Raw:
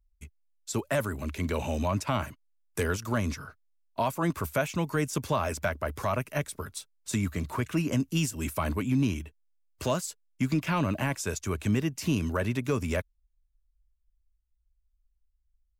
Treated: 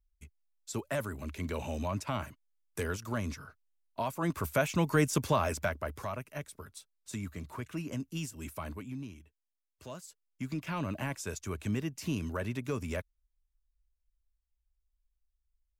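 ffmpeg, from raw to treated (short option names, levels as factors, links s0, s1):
-af "volume=4.73,afade=t=in:st=4.11:d=0.89:silence=0.398107,afade=t=out:st=5:d=1.16:silence=0.251189,afade=t=out:st=8.58:d=0.51:silence=0.398107,afade=t=in:st=9.83:d=1.18:silence=0.266073"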